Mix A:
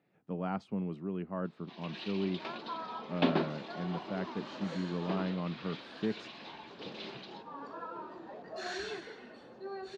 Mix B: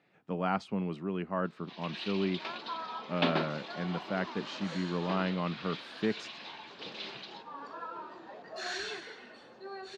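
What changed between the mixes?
speech +6.0 dB; master: add tilt shelf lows -5 dB, about 750 Hz

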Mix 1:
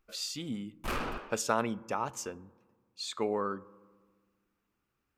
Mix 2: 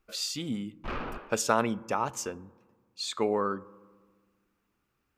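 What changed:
speech +4.0 dB; background: add air absorption 230 m

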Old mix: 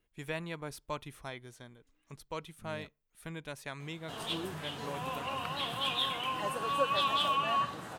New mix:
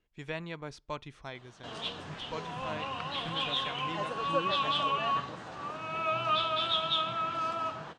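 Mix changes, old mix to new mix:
background: entry -2.45 s; master: add LPF 6500 Hz 24 dB/oct

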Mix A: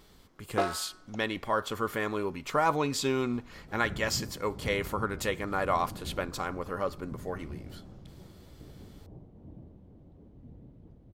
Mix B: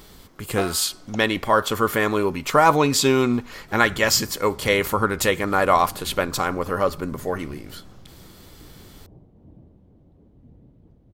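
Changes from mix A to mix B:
speech +10.5 dB; master: add high shelf 9200 Hz +7 dB

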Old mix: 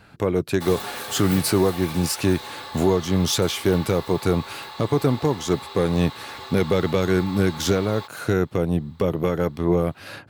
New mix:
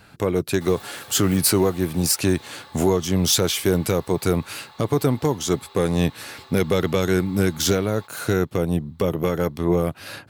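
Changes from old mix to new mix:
speech: add high shelf 4700 Hz +8.5 dB; background -9.5 dB

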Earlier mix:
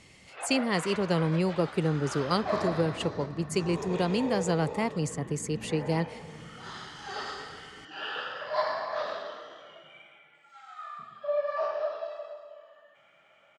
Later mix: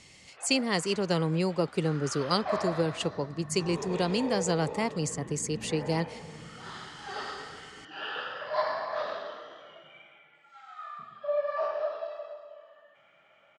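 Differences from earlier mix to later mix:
speech: add tone controls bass -2 dB, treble +11 dB; first sound -9.0 dB; master: add air absorption 61 m

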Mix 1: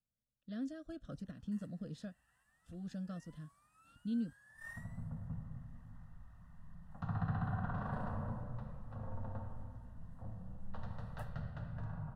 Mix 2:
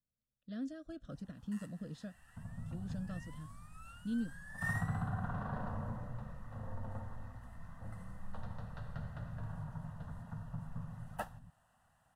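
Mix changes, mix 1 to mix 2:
first sound +11.0 dB; second sound: entry -2.40 s

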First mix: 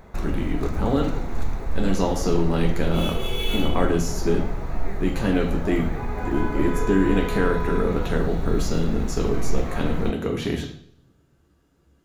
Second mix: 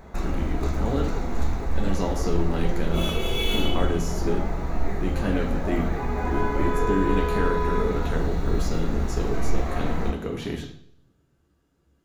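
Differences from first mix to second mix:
speech -5.0 dB; background: send +7.0 dB

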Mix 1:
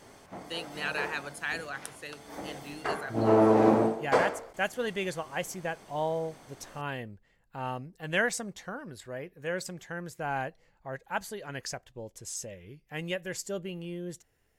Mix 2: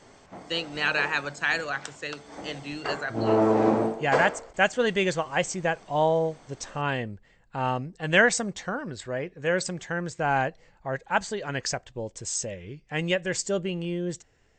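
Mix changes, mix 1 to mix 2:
speech +8.0 dB; master: add brick-wall FIR low-pass 8400 Hz

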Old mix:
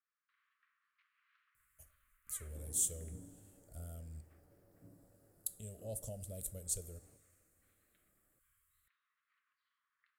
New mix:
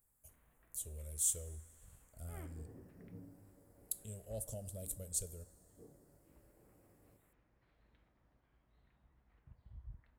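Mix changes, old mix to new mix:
speech: entry -1.55 s; first sound: remove steep high-pass 1100 Hz 96 dB/oct

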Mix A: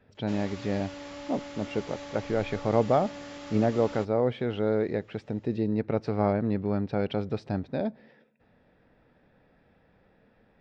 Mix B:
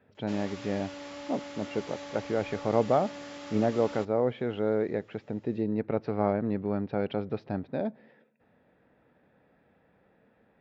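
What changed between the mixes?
speech: add air absorption 220 m; master: add HPF 160 Hz 6 dB/oct

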